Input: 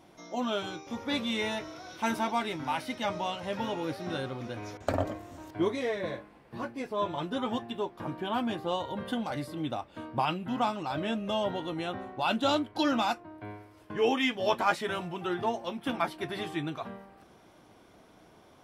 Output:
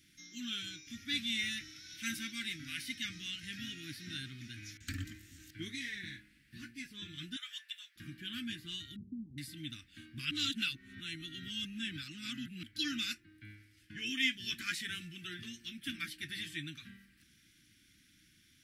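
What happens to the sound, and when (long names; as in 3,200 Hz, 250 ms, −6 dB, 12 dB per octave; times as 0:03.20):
0:07.36–0:07.96: Butterworth high-pass 740 Hz
0:08.96–0:09.38: linear-phase brick-wall low-pass 1,000 Hz
0:10.31–0:12.63: reverse
0:13.55–0:14.06: high-shelf EQ 10,000 Hz −7 dB
whole clip: elliptic band-stop filter 300–1,700 Hz, stop band 50 dB; guitar amp tone stack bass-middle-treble 5-5-5; level +8.5 dB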